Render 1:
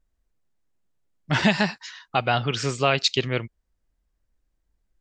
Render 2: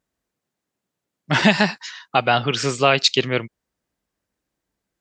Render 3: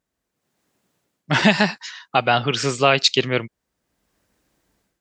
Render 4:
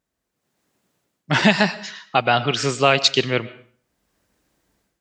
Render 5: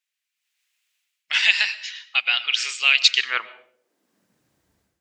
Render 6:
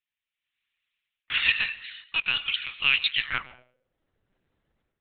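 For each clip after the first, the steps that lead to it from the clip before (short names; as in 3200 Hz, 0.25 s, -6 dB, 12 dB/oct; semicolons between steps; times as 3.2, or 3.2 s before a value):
HPF 150 Hz 12 dB/oct; gain +5 dB
AGC gain up to 13.5 dB; gain -1 dB
reverb RT60 0.50 s, pre-delay 75 ms, DRR 16.5 dB
high-pass sweep 2500 Hz -> 77 Hz, 3.06–4.63; gain -2 dB
LPC vocoder at 8 kHz pitch kept; gain -5 dB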